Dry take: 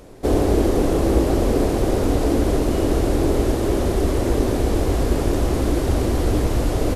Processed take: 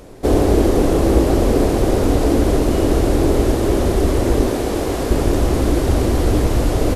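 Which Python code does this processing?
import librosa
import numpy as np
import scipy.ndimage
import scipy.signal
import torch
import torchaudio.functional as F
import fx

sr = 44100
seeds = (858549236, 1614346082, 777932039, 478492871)

y = fx.low_shelf(x, sr, hz=140.0, db=-11.0, at=(4.48, 5.11))
y = y * 10.0 ** (3.5 / 20.0)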